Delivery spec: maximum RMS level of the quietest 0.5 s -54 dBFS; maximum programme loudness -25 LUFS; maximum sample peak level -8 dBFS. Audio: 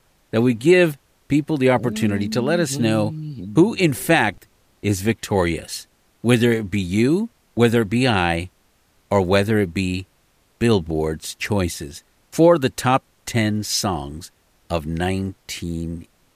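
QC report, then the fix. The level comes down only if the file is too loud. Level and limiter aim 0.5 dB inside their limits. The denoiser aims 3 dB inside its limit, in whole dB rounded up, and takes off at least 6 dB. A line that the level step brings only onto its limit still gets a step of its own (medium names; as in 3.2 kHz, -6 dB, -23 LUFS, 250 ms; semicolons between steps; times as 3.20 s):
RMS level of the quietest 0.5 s -61 dBFS: pass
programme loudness -20.0 LUFS: fail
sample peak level -3.5 dBFS: fail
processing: trim -5.5 dB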